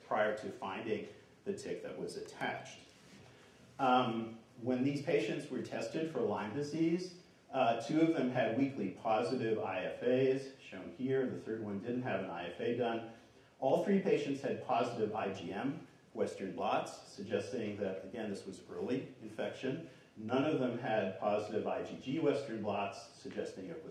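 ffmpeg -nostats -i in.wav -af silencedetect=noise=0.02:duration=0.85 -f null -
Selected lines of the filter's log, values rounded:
silence_start: 2.56
silence_end: 3.80 | silence_duration: 1.24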